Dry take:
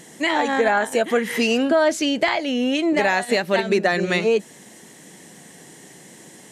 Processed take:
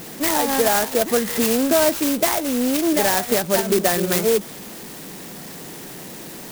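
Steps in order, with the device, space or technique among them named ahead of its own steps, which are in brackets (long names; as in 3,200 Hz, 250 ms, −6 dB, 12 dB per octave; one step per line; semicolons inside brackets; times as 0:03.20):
early CD player with a faulty converter (converter with a step at zero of −32.5 dBFS; converter with an unsteady clock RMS 0.11 ms)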